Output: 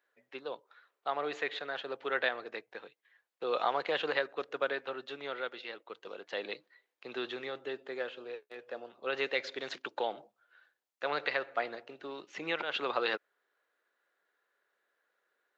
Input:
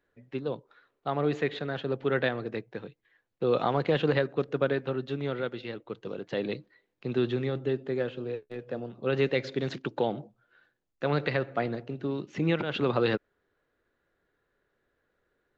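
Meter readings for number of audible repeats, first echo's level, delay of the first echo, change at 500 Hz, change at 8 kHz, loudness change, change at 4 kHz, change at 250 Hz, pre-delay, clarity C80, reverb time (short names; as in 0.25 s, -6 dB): none, none, none, -7.5 dB, n/a, -6.0 dB, 0.0 dB, -15.0 dB, none, none, none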